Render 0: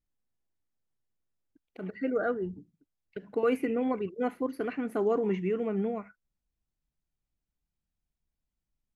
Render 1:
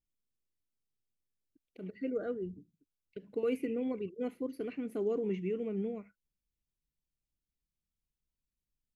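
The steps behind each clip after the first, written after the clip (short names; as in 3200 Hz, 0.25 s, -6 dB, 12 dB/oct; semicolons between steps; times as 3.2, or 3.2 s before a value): band shelf 1100 Hz -10.5 dB; gain -5 dB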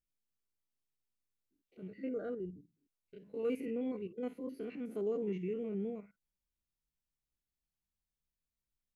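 stepped spectrum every 50 ms; gain -2 dB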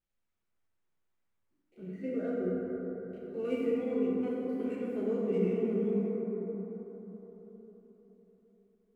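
median filter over 9 samples; flange 0.72 Hz, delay 9 ms, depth 2.9 ms, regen -55%; plate-style reverb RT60 4.5 s, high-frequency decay 0.3×, DRR -5 dB; gain +4.5 dB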